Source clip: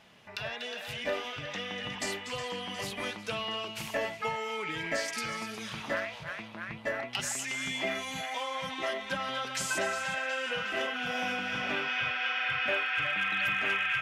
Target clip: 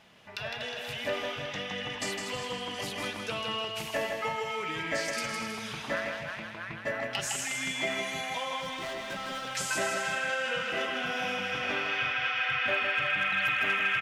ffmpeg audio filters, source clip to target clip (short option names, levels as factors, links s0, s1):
-filter_complex "[0:a]asettb=1/sr,asplit=3[s0][s1][s2];[s0]atrim=end=8.604[s3];[s1]atrim=start=8.6:end=9.5,asetpts=PTS-STARTPTS,afade=t=in:d=0.004:c=qsin,afade=t=out:st=0.896:d=0.004:c=qsin,asoftclip=type=hard:threshold=0.0178[s4];[s2]atrim=start=9.496[s5];[s3][s4]acrossfade=d=0.004:c1=hsin:c2=qsin[s6];[s6][s5]acrossfade=d=0.004:c1=qsin:c2=hsin,aecho=1:1:159|318|477|636|795:0.562|0.236|0.0992|0.0417|0.0175"